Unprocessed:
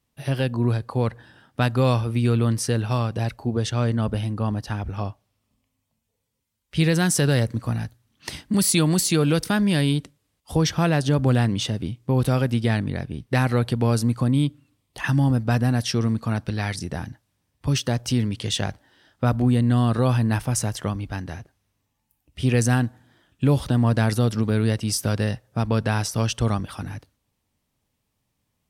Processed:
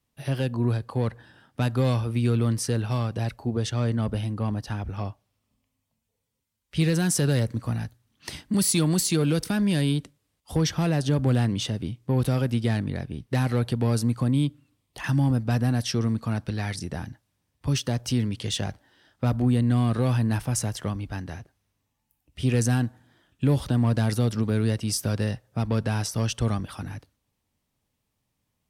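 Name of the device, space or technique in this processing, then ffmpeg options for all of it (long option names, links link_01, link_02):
one-band saturation: -filter_complex "[0:a]acrossover=split=430|3900[link_01][link_02][link_03];[link_02]asoftclip=type=tanh:threshold=-25dB[link_04];[link_01][link_04][link_03]amix=inputs=3:normalize=0,volume=-2.5dB"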